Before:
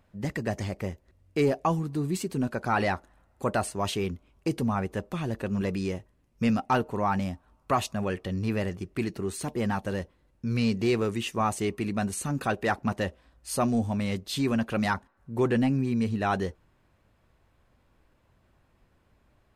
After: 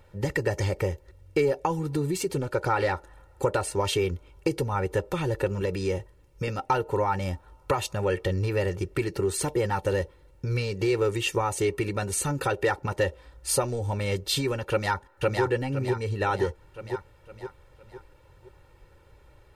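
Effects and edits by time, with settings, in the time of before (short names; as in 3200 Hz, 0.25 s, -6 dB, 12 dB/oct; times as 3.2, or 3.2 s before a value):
2.29–3.96 Doppler distortion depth 0.17 ms
5.65–6.48 compressor 1.5:1, threshold -35 dBFS
14.7–15.42 echo throw 0.51 s, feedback 45%, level -0.5 dB
whole clip: compressor, threshold -31 dBFS; bell 550 Hz +4 dB 0.21 oct; comb 2.2 ms, depth 84%; gain +6.5 dB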